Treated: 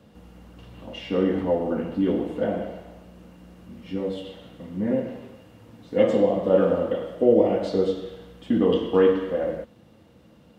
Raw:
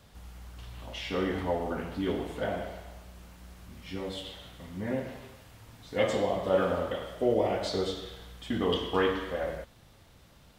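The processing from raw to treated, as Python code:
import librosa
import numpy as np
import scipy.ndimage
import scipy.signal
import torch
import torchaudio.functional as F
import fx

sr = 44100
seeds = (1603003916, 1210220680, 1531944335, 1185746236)

y = scipy.signal.sosfilt(scipy.signal.butter(2, 71.0, 'highpass', fs=sr, output='sos'), x)
y = fx.high_shelf(y, sr, hz=2800.0, db=-8.0)
y = fx.small_body(y, sr, hz=(220.0, 310.0, 480.0, 2800.0), ring_ms=45, db=12)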